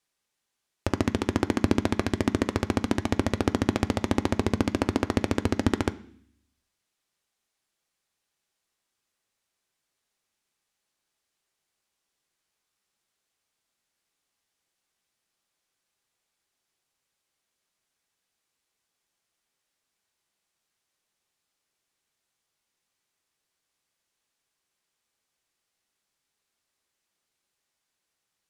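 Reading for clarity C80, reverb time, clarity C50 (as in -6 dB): 21.0 dB, 0.60 s, 18.5 dB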